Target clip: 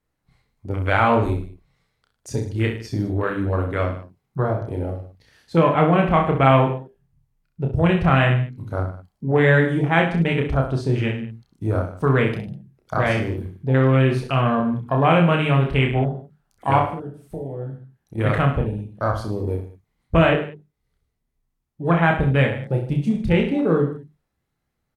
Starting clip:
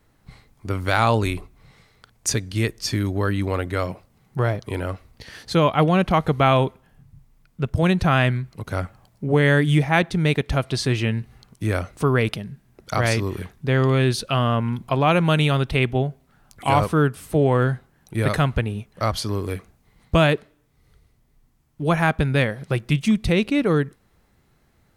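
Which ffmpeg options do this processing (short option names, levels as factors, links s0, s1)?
-filter_complex "[0:a]asettb=1/sr,asplit=3[s0][s1][s2];[s0]atrim=end=16.794[s3];[s1]atrim=start=16.79:end=18.18,asetpts=PTS-STARTPTS,afade=t=in:d=0.004:c=qsin,afade=t=out:st=1.386:d=0.004:c=qsin,acompressor=threshold=0.0355:ratio=10[s4];[s2]atrim=start=18.176[s5];[s3][s4]acrossfade=d=0.004:c1=hsin:c2=qsin[s6];[s6][s5]acrossfade=d=0.004:c1=qsin:c2=hsin,bandreject=f=50:t=h:w=6,bandreject=f=100:t=h:w=6,bandreject=f=150:t=h:w=6,bandreject=f=200:t=h:w=6,bandreject=f=250:t=h:w=6,bandreject=f=300:t=h:w=6,bandreject=f=350:t=h:w=6,bandreject=f=400:t=h:w=6,afwtdn=0.0447,asettb=1/sr,asplit=3[s7][s8][s9];[s7]atrim=end=20.294[s10];[s8]atrim=start=20.29:end=22.04,asetpts=PTS-STARTPTS,afade=t=in:d=0.004:c=qsin,afade=t=out:st=1.746:d=0.004:c=qsin,acrossover=split=3800[s11][s12];[s12]acompressor=threshold=0.002:ratio=4:attack=1:release=60[s13];[s11][s13]amix=inputs=2:normalize=0[s14];[s9]atrim=start=22.036[s15];[s10][s14]acrossfade=d=0.004:c1=hsin:c2=qsin[s16];[s16][s15]acrossfade=d=0.004:c1=qsin:c2=hsin,aecho=1:1:30|64.5|104.2|149.8|202.3:0.631|0.398|0.251|0.158|0.1" -ar 44100 -c:a libvorbis -b:a 96k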